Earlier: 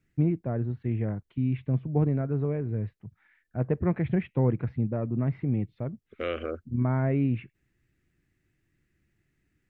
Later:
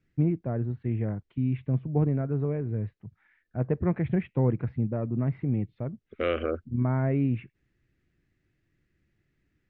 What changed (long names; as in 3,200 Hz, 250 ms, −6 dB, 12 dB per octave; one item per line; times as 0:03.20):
second voice +4.5 dB
master: add high-frequency loss of the air 130 metres